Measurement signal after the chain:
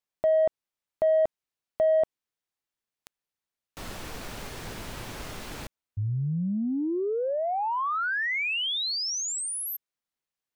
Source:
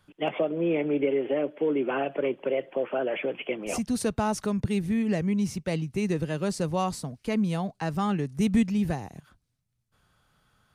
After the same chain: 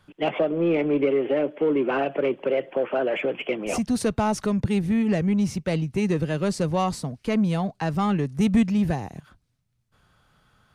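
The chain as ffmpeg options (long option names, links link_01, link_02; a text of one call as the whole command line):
ffmpeg -i in.wav -filter_complex "[0:a]highshelf=frequency=6800:gain=-7,asplit=2[link_01][link_02];[link_02]asoftclip=type=tanh:threshold=-27dB,volume=-5dB[link_03];[link_01][link_03]amix=inputs=2:normalize=0,volume=1.5dB" out.wav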